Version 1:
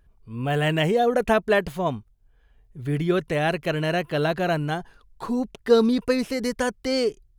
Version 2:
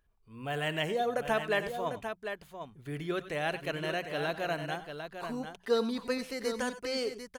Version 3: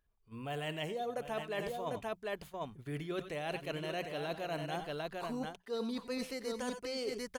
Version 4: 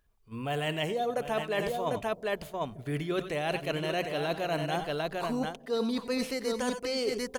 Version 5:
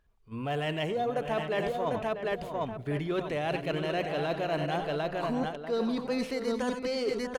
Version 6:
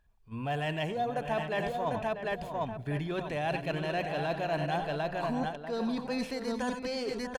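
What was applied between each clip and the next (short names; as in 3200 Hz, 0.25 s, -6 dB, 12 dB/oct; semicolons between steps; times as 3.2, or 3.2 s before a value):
low shelf 430 Hz -8.5 dB; notches 60/120/180 Hz; on a send: tapped delay 89/99/748 ms -16/-17.5/-8 dB; on the sum: gain -7 dB
gate -52 dBFS, range -10 dB; dynamic EQ 1600 Hz, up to -6 dB, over -50 dBFS, Q 2.4; reverse; compressor 10:1, threshold -39 dBFS, peak gain reduction 16.5 dB; reverse; gain +4 dB
on a send at -20 dB: inverse Chebyshev low-pass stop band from 3400 Hz, stop band 70 dB + reverb RT60 2.5 s, pre-delay 90 ms; on the sum: gain +7.5 dB
LPF 3200 Hz 6 dB/oct; in parallel at -6 dB: soft clip -33.5 dBFS, distortion -9 dB; on the sum: outdoor echo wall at 110 m, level -9 dB; gain -1.5 dB
comb 1.2 ms, depth 37%; gain -1.5 dB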